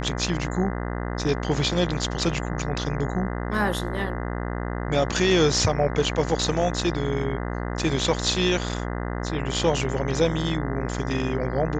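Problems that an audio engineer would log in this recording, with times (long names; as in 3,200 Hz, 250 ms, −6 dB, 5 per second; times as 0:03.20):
mains buzz 60 Hz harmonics 34 −29 dBFS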